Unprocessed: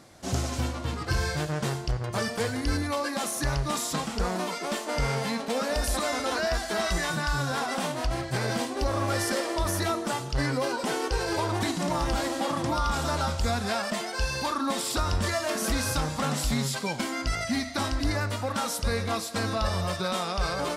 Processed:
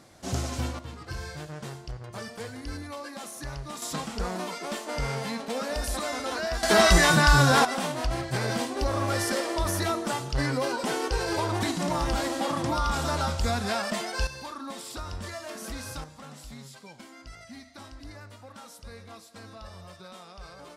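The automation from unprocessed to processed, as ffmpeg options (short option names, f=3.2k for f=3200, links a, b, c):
-af "asetnsamples=n=441:p=0,asendcmd='0.79 volume volume -9.5dB;3.82 volume volume -3dB;6.63 volume volume 9.5dB;7.65 volume volume 0dB;14.27 volume volume -10dB;16.04 volume volume -17dB',volume=-1.5dB"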